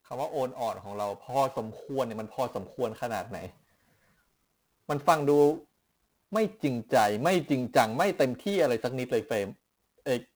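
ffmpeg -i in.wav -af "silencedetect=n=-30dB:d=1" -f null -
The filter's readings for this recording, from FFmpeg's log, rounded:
silence_start: 3.46
silence_end: 4.89 | silence_duration: 1.43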